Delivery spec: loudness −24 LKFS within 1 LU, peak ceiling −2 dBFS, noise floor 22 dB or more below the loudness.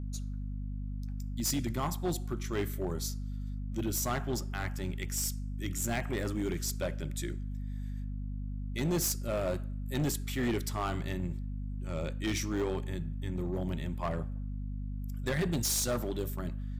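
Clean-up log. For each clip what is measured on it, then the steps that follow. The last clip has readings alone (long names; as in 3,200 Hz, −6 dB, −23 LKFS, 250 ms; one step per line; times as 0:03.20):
share of clipped samples 1.7%; peaks flattened at −26.0 dBFS; mains hum 50 Hz; hum harmonics up to 250 Hz; level of the hum −35 dBFS; integrated loudness −35.0 LKFS; sample peak −26.0 dBFS; target loudness −24.0 LKFS
→ clipped peaks rebuilt −26 dBFS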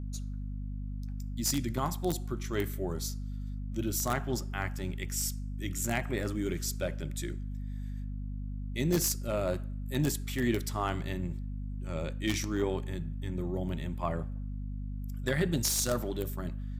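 share of clipped samples 0.0%; mains hum 50 Hz; hum harmonics up to 250 Hz; level of the hum −34 dBFS
→ hum removal 50 Hz, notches 5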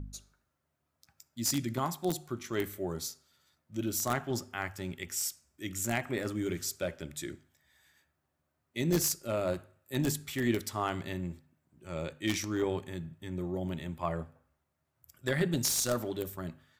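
mains hum none found; integrated loudness −34.0 LKFS; sample peak −16.0 dBFS; target loudness −24.0 LKFS
→ level +10 dB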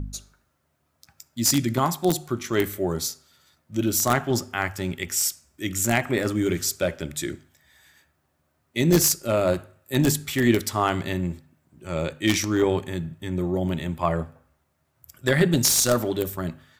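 integrated loudness −24.0 LKFS; sample peak −6.0 dBFS; background noise floor −71 dBFS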